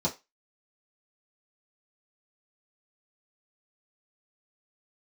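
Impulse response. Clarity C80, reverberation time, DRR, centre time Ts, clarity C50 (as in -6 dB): 23.5 dB, 0.25 s, -6.5 dB, 15 ms, 16.0 dB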